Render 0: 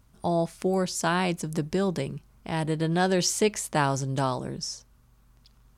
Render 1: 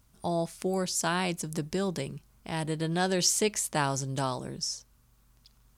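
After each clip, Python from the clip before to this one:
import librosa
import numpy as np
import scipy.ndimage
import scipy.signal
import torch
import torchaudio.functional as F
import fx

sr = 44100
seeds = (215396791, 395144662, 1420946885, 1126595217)

y = fx.high_shelf(x, sr, hz=3400.0, db=7.5)
y = fx.quant_dither(y, sr, seeds[0], bits=12, dither='none')
y = y * 10.0 ** (-4.5 / 20.0)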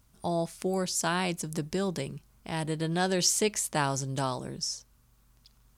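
y = x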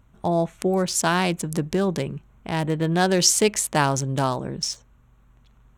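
y = fx.wiener(x, sr, points=9)
y = y * 10.0 ** (8.0 / 20.0)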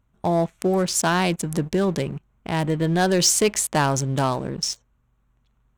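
y = fx.leveller(x, sr, passes=2)
y = y * 10.0 ** (-6.0 / 20.0)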